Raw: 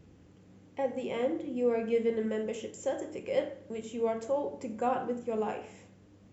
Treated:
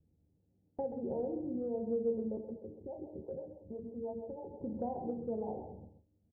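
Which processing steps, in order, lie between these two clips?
adaptive Wiener filter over 25 samples
Butterworth low-pass 920 Hz 96 dB per octave
noise gate with hold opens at −46 dBFS
low-shelf EQ 130 Hz +10.5 dB
downward compressor, threshold −34 dBFS, peak gain reduction 11.5 dB
0:02.37–0:04.61: two-band tremolo in antiphase 6.1 Hz, depth 100%, crossover 400 Hz
tuned comb filter 77 Hz, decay 0.26 s, harmonics all, mix 70%
single-tap delay 132 ms −9 dB
level +5 dB

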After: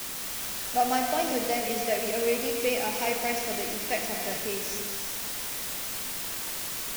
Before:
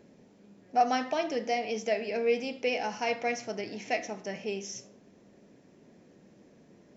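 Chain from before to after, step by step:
background noise pink −56 dBFS
bit-depth reduction 6 bits, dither triangular
reverb whose tail is shaped and stops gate 440 ms flat, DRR 3 dB

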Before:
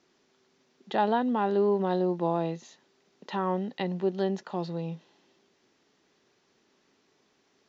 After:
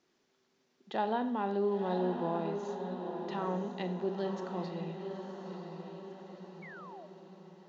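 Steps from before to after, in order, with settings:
feedback delay with all-pass diffusion 993 ms, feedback 53%, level −6.5 dB
four-comb reverb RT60 0.68 s, combs from 29 ms, DRR 9.5 dB
sound drawn into the spectrogram fall, 0:06.62–0:07.07, 570–2,300 Hz −43 dBFS
level −7 dB

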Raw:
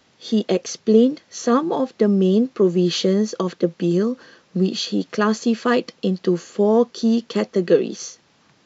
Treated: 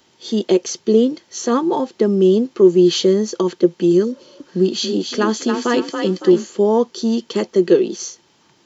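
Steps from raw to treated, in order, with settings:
0:04.12–0:06.47: echo with shifted repeats 279 ms, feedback 37%, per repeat +32 Hz, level −6 dB
0:04.07–0:04.38: healed spectral selection 500–2,100 Hz after
high-shelf EQ 5,800 Hz +11 dB
hollow resonant body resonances 360/900/3,100 Hz, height 10 dB, ringing for 45 ms
level −1.5 dB

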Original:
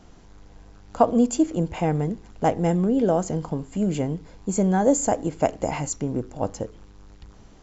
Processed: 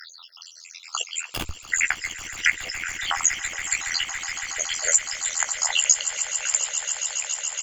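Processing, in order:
time-frequency cells dropped at random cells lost 83%
inverse Chebyshev high-pass filter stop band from 290 Hz, stop band 80 dB
in parallel at +0.5 dB: downward compressor 5 to 1, threshold −53 dBFS, peak gain reduction 22.5 dB
0:01.28–0:01.70: on the sum: comparator with hysteresis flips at −45.5 dBFS
amplitude modulation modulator 83 Hz, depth 95%
double-tracking delay 16 ms −12 dB
echo that builds up and dies away 140 ms, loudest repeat 8, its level −16 dB
boost into a limiter +30 dB
level −3.5 dB

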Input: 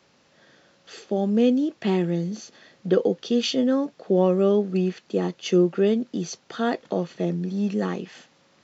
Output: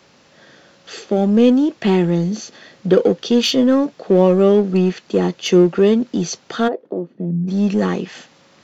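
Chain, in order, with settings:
in parallel at −7.5 dB: hard clipping −26 dBFS, distortion −5 dB
0:06.67–0:07.47: on the sum: resonant band-pass 520 Hz → 150 Hz, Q 2.7
level +6 dB

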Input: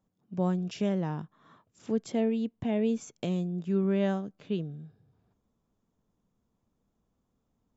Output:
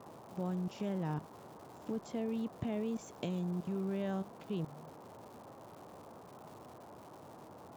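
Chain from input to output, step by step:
output level in coarse steps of 18 dB
noise in a band 90–1,000 Hz −53 dBFS
surface crackle 390 per second −50 dBFS

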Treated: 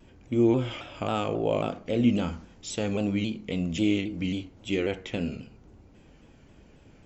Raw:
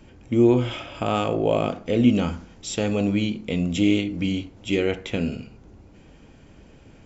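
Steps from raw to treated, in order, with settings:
pitch modulation by a square or saw wave saw down 3.7 Hz, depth 100 cents
level −5 dB

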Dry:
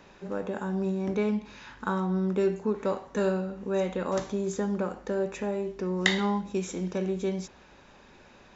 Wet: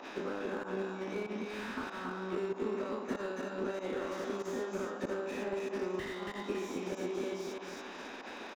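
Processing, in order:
every bin's largest magnitude spread in time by 120 ms
flat-topped bell 2,600 Hz +8 dB 2.6 octaves
downward compressor 12 to 1, threshold −34 dBFS, peak gain reduction 27 dB
low shelf with overshoot 180 Hz −13.5 dB, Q 3
notch filter 4,400 Hz, Q 16
repeating echo 279 ms, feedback 30%, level −4 dB
fake sidechain pumping 95 BPM, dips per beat 1, −14 dB, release 86 ms
transient designer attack +6 dB, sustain −2 dB
noise in a band 240–1,100 Hz −47 dBFS
slew-rate limiting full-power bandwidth 24 Hz
level −3.5 dB

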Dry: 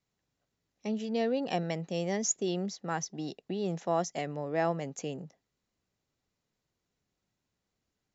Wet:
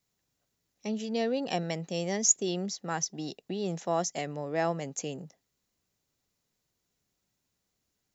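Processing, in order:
high-shelf EQ 5,600 Hz +12 dB

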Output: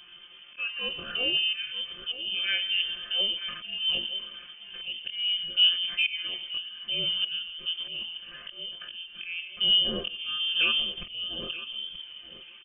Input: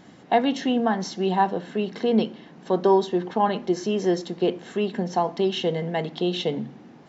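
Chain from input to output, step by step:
comb filter 5.8 ms, depth 85%
volume swells 309 ms
tempo change 0.56×
repeating echo 927 ms, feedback 16%, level −14.5 dB
on a send at −18.5 dB: convolution reverb RT60 0.45 s, pre-delay 80 ms
on the sum: voice inversion scrambler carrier 3,300 Hz
level −3.5 dB

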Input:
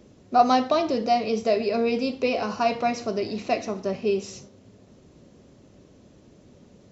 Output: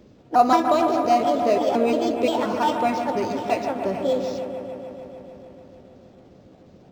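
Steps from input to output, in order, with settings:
pitch shifter gated in a rhythm +4.5 semitones, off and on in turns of 175 ms
delay with a low-pass on its return 149 ms, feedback 78%, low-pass 2,300 Hz, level −7 dB
linearly interpolated sample-rate reduction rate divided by 4×
level +1.5 dB

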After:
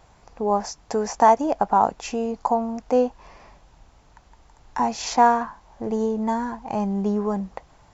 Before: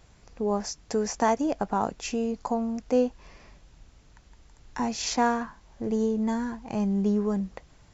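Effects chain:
parametric band 850 Hz +11 dB 1.2 octaves

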